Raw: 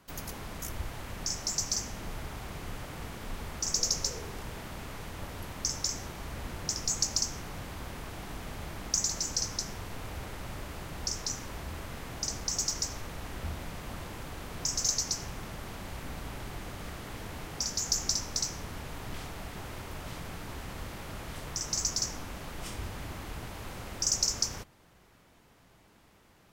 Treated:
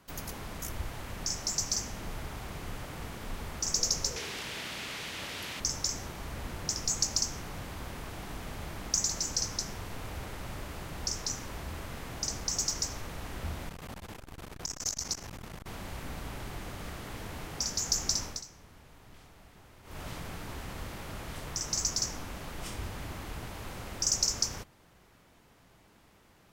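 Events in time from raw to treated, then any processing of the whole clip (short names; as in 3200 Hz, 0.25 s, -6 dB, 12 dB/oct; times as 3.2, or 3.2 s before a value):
4.16–5.6 weighting filter D
13.69–15.67 core saturation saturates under 1100 Hz
18.25–20.01 dip -14.5 dB, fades 0.18 s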